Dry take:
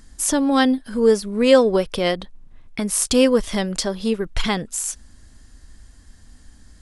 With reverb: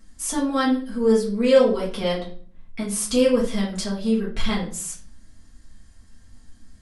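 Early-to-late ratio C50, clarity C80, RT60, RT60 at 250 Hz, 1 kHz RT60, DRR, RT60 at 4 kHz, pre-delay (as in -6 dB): 7.5 dB, 13.0 dB, 0.50 s, 0.70 s, 0.45 s, -6.5 dB, 0.35 s, 4 ms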